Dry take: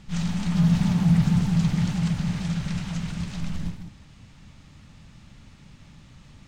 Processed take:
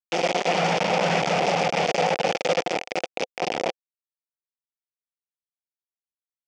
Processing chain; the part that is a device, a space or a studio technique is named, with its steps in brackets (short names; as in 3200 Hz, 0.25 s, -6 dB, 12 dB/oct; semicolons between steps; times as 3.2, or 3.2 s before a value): hand-held game console (bit-crush 4-bit; speaker cabinet 460–5300 Hz, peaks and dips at 510 Hz +7 dB, 740 Hz +9 dB, 1100 Hz -7 dB, 1600 Hz -6 dB, 2400 Hz +4 dB, 4000 Hz -9 dB); gain +5 dB